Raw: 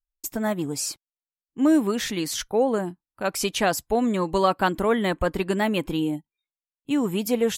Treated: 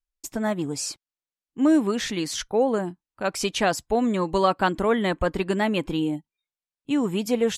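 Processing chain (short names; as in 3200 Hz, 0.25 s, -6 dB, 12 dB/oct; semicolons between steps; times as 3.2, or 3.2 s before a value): LPF 8500 Hz 12 dB/oct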